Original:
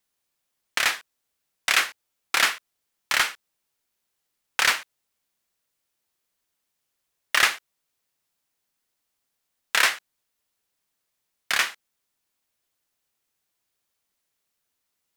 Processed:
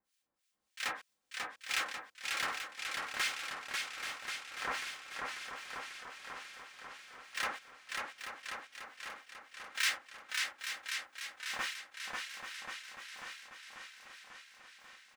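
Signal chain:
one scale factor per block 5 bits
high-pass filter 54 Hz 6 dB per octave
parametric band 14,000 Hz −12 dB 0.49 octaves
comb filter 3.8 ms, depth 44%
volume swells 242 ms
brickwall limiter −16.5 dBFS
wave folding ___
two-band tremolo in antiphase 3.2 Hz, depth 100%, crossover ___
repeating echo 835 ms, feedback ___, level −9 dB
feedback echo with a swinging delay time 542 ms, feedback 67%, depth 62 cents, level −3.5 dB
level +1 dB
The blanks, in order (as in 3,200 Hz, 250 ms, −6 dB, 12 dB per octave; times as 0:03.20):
−21 dBFS, 1,500 Hz, 54%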